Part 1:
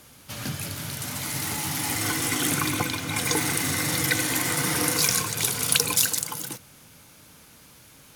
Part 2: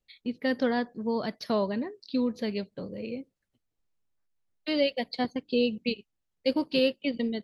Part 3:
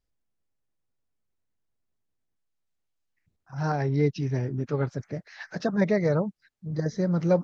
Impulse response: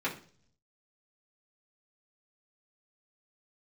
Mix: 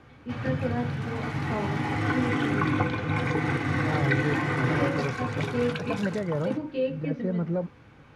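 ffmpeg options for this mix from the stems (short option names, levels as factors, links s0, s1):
-filter_complex "[0:a]equalizer=f=60:w=0.66:g=6.5,alimiter=limit=0.266:level=0:latency=1:release=200,volume=0.891,asplit=2[s0][s1];[s1]volume=0.376[s2];[1:a]volume=0.299,asplit=2[s3][s4];[s4]volume=0.668[s5];[2:a]alimiter=limit=0.141:level=0:latency=1,adelay=250,volume=0.708[s6];[3:a]atrim=start_sample=2205[s7];[s2][s5]amix=inputs=2:normalize=0[s8];[s8][s7]afir=irnorm=-1:irlink=0[s9];[s0][s3][s6][s9]amix=inputs=4:normalize=0,lowpass=1800"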